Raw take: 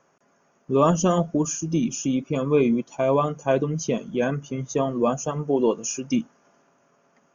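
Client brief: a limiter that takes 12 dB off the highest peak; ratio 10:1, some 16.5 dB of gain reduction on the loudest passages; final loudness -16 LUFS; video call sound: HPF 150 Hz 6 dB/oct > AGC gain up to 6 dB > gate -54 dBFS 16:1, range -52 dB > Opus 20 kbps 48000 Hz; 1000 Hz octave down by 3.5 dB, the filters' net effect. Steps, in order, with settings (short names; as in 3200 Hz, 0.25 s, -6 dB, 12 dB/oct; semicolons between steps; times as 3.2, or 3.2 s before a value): bell 1000 Hz -4.5 dB; compressor 10:1, threshold -33 dBFS; limiter -33.5 dBFS; HPF 150 Hz 6 dB/oct; AGC gain up to 6 dB; gate -54 dBFS 16:1, range -52 dB; gain +27.5 dB; Opus 20 kbps 48000 Hz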